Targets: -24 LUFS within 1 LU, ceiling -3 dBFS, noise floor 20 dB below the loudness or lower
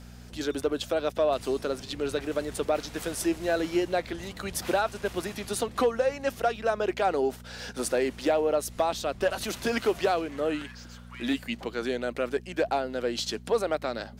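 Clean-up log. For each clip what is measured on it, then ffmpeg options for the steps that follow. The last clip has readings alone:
hum 60 Hz; harmonics up to 240 Hz; hum level -45 dBFS; loudness -29.0 LUFS; peak -15.0 dBFS; loudness target -24.0 LUFS
-> -af "bandreject=f=60:t=h:w=4,bandreject=f=120:t=h:w=4,bandreject=f=180:t=h:w=4,bandreject=f=240:t=h:w=4"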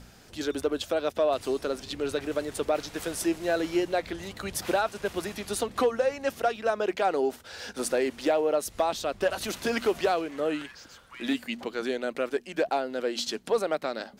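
hum none; loudness -29.0 LUFS; peak -15.5 dBFS; loudness target -24.0 LUFS
-> -af "volume=5dB"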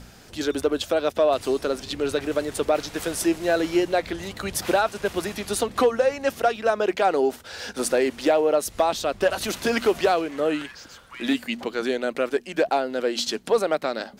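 loudness -24.0 LUFS; peak -10.5 dBFS; noise floor -48 dBFS

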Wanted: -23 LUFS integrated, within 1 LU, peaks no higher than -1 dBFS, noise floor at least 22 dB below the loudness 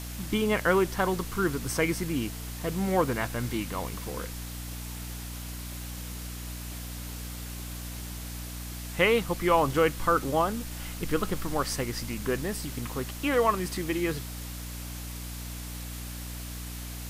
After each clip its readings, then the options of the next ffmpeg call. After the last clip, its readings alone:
hum 60 Hz; harmonics up to 300 Hz; hum level -36 dBFS; noise floor -38 dBFS; noise floor target -53 dBFS; loudness -30.5 LUFS; peak -8.5 dBFS; loudness target -23.0 LUFS
-> -af "bandreject=f=60:t=h:w=6,bandreject=f=120:t=h:w=6,bandreject=f=180:t=h:w=6,bandreject=f=240:t=h:w=6,bandreject=f=300:t=h:w=6"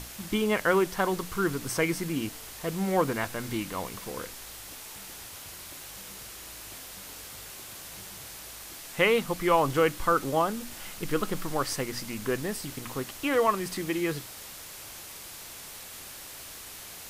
hum none; noise floor -44 dBFS; noise floor target -52 dBFS
-> -af "afftdn=nr=8:nf=-44"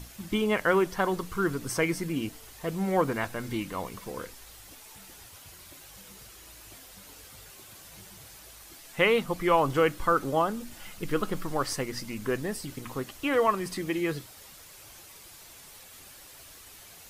noise floor -50 dBFS; noise floor target -51 dBFS
-> -af "afftdn=nr=6:nf=-50"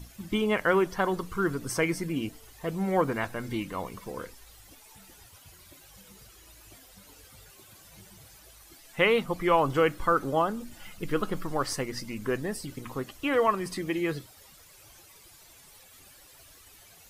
noise floor -54 dBFS; loudness -29.0 LUFS; peak -9.5 dBFS; loudness target -23.0 LUFS
-> -af "volume=6dB"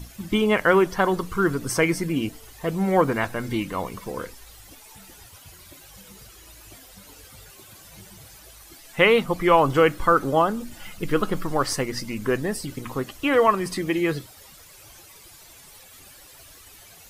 loudness -23.0 LUFS; peak -3.5 dBFS; noise floor -48 dBFS

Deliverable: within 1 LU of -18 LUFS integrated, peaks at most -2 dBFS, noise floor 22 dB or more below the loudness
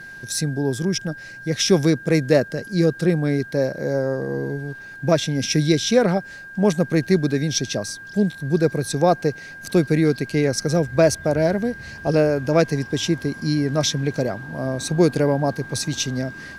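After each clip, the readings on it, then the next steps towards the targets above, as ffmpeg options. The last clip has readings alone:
steady tone 1600 Hz; tone level -36 dBFS; loudness -21.0 LUFS; peak -4.0 dBFS; loudness target -18.0 LUFS
-> -af "bandreject=f=1.6k:w=30"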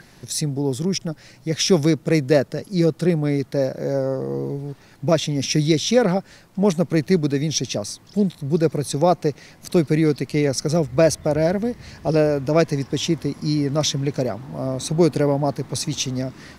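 steady tone none; loudness -21.5 LUFS; peak -4.0 dBFS; loudness target -18.0 LUFS
-> -af "volume=3.5dB,alimiter=limit=-2dB:level=0:latency=1"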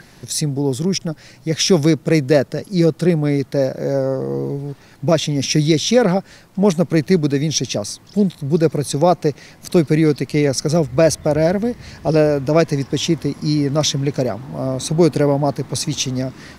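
loudness -18.0 LUFS; peak -2.0 dBFS; noise floor -46 dBFS

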